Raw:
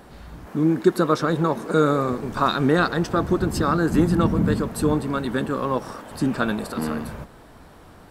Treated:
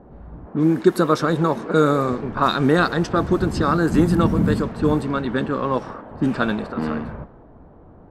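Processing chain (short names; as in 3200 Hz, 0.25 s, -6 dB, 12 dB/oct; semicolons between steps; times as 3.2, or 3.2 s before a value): low-pass opened by the level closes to 640 Hz, open at -16 dBFS; gain +2 dB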